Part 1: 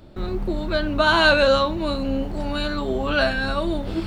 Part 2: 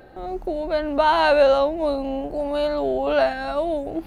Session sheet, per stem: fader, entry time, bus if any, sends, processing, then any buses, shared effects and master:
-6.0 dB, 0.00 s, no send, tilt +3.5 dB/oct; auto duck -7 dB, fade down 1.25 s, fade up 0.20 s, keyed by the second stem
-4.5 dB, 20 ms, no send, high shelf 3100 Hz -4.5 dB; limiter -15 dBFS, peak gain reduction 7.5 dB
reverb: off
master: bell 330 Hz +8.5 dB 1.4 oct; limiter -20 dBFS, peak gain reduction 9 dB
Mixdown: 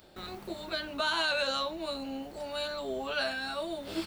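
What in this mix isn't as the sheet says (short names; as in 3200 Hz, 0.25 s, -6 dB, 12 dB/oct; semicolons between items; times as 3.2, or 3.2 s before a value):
stem 2 -4.5 dB -> -14.5 dB; master: missing bell 330 Hz +8.5 dB 1.4 oct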